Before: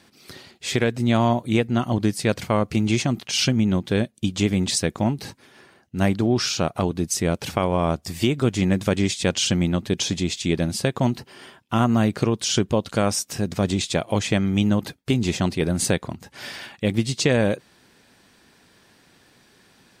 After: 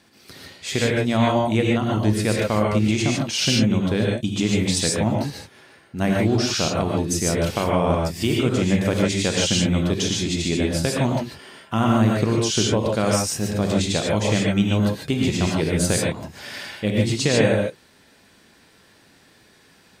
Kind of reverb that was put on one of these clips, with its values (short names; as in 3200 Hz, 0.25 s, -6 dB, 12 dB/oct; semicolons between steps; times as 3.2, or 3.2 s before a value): non-linear reverb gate 0.17 s rising, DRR -2 dB; gain -2 dB